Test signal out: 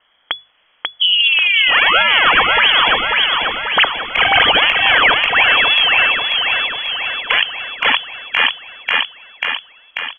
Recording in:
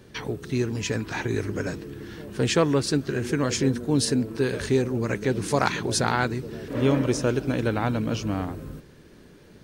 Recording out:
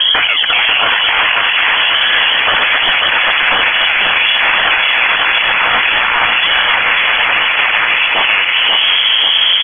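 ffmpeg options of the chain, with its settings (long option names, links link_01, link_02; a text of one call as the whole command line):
ffmpeg -i in.wav -filter_complex "[0:a]acrossover=split=400|990[link_01][link_02][link_03];[link_02]acrusher=samples=33:mix=1:aa=0.000001:lfo=1:lforange=52.8:lforate=1.1[link_04];[link_01][link_04][link_03]amix=inputs=3:normalize=0,lowshelf=frequency=440:gain=4.5,asoftclip=type=tanh:threshold=-24.5dB,afftfilt=real='re*lt(hypot(re,im),0.0501)':imag='im*lt(hypot(re,im),0.0501)':win_size=1024:overlap=0.75,lowpass=frequency=2900:width_type=q:width=0.5098,lowpass=frequency=2900:width_type=q:width=0.6013,lowpass=frequency=2900:width_type=q:width=0.9,lowpass=frequency=2900:width_type=q:width=2.563,afreqshift=-3400,bandreject=frequency=380:width=12,acompressor=threshold=-47dB:ratio=6,equalizer=frequency=150:width=0.36:gain=-7.5,bandreject=frequency=50:width_type=h:width=6,bandreject=frequency=100:width_type=h:width=6,bandreject=frequency=150:width_type=h:width=6,aecho=1:1:540|1080|1620|2160|2700|3240|3780|4320:0.596|0.345|0.2|0.116|0.0674|0.0391|0.0227|0.0132,acontrast=50,alimiter=level_in=35.5dB:limit=-1dB:release=50:level=0:latency=1,volume=-1dB" out.wav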